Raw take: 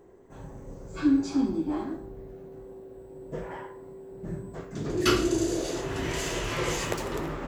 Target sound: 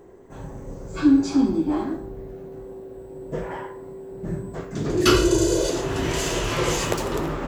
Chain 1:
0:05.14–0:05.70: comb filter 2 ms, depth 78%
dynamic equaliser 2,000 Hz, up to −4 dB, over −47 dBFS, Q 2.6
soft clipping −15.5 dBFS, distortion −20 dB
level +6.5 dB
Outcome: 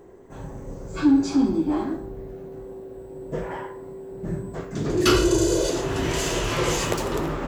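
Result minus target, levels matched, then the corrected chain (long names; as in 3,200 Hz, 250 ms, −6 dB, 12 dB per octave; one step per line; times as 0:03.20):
soft clipping: distortion +15 dB
0:05.14–0:05.70: comb filter 2 ms, depth 78%
dynamic equaliser 2,000 Hz, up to −4 dB, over −47 dBFS, Q 2.6
soft clipping −7 dBFS, distortion −35 dB
level +6.5 dB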